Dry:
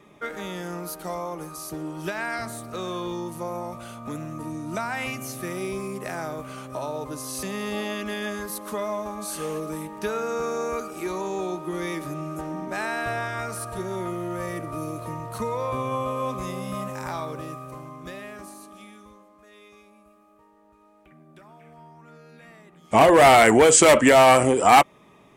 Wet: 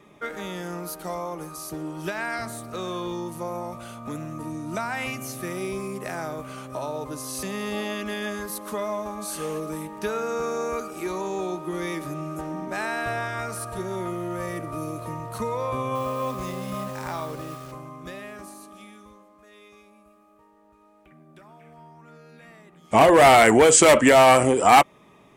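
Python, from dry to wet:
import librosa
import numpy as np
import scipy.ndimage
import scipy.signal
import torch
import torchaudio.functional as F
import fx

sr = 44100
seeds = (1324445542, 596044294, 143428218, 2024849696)

y = fx.delta_hold(x, sr, step_db=-40.5, at=(15.95, 17.72))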